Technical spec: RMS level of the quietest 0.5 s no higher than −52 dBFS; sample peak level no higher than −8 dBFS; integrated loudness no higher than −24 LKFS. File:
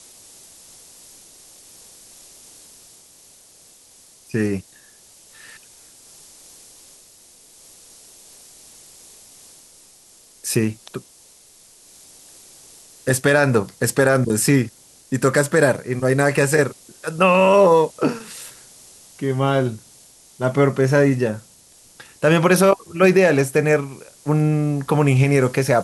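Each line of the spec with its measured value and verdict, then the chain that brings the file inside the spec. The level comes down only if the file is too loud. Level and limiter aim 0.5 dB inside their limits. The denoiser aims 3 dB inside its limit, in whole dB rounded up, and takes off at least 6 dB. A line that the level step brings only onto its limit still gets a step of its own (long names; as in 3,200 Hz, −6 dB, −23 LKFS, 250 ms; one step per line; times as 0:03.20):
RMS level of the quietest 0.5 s −50 dBFS: out of spec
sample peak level −4.5 dBFS: out of spec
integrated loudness −18.0 LKFS: out of spec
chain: level −6.5 dB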